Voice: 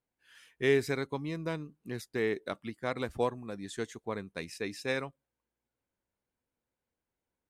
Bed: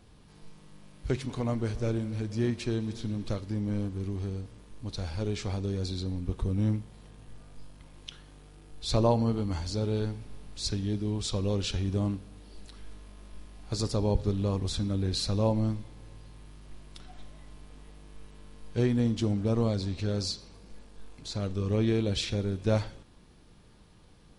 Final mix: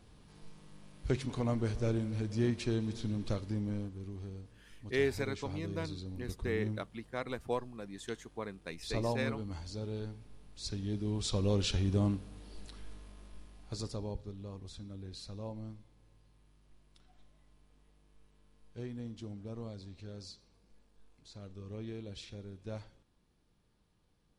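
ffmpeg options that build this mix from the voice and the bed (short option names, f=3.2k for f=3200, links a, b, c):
-filter_complex "[0:a]adelay=4300,volume=-4.5dB[a];[1:a]volume=6.5dB,afade=t=out:st=3.46:d=0.48:silence=0.421697,afade=t=in:st=10.56:d=0.97:silence=0.354813,afade=t=out:st=12.6:d=1.65:silence=0.16788[b];[a][b]amix=inputs=2:normalize=0"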